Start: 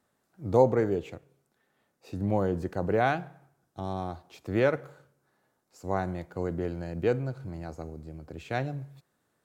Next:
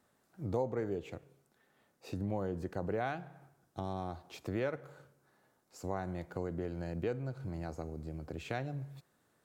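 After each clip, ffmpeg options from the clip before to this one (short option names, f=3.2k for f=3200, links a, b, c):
-af "acompressor=threshold=-39dB:ratio=2.5,volume=1.5dB"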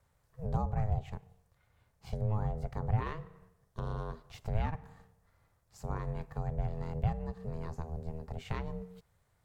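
-af "aeval=exprs='val(0)*sin(2*PI*320*n/s)':c=same,lowshelf=f=160:t=q:w=1.5:g=11.5"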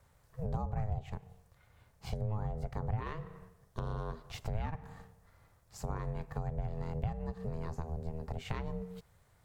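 -af "acompressor=threshold=-42dB:ratio=2.5,volume=6dB"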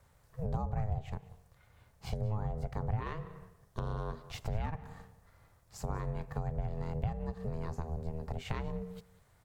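-af "aecho=1:1:189:0.0891,volume=1dB"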